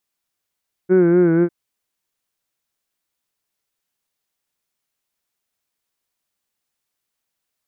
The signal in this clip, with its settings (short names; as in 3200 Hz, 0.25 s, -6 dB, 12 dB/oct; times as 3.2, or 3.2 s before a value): formant vowel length 0.60 s, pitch 181 Hz, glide -1.5 st, vibrato 4.1 Hz, vibrato depth 0.7 st, F1 370 Hz, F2 1500 Hz, F3 2200 Hz